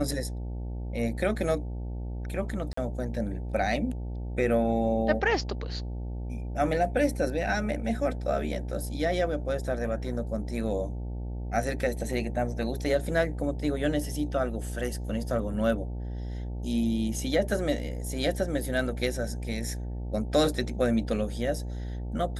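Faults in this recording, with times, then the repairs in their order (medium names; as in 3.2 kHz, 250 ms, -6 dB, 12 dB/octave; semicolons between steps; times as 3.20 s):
buzz 60 Hz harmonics 15 -34 dBFS
2.73–2.77 s: dropout 44 ms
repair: de-hum 60 Hz, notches 15; interpolate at 2.73 s, 44 ms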